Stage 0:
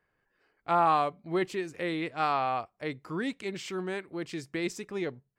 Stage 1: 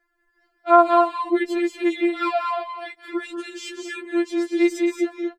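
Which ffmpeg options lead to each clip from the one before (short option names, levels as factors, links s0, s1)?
-filter_complex "[0:a]asplit=2[s0][s1];[s1]aecho=0:1:183.7|227.4:0.355|0.501[s2];[s0][s2]amix=inputs=2:normalize=0,afftfilt=real='re*4*eq(mod(b,16),0)':imag='im*4*eq(mod(b,16),0)':win_size=2048:overlap=0.75,volume=2.11"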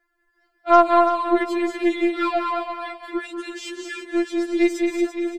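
-filter_complex "[0:a]aeval=exprs='0.841*(cos(1*acos(clip(val(0)/0.841,-1,1)))-cos(1*PI/2))+0.0299*(cos(6*acos(clip(val(0)/0.841,-1,1)))-cos(6*PI/2))':c=same,asplit=2[s0][s1];[s1]aecho=0:1:338|676|1014:0.316|0.0854|0.0231[s2];[s0][s2]amix=inputs=2:normalize=0"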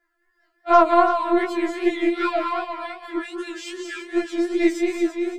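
-af "flanger=delay=19:depth=7.6:speed=2.6,volume=1.33"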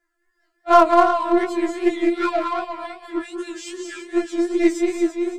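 -filter_complex "[0:a]equalizer=f=7600:t=o:w=1.1:g=7.5,asplit=2[s0][s1];[s1]adynamicsmooth=sensitivity=1.5:basefreq=540,volume=0.75[s2];[s0][s2]amix=inputs=2:normalize=0,volume=0.708"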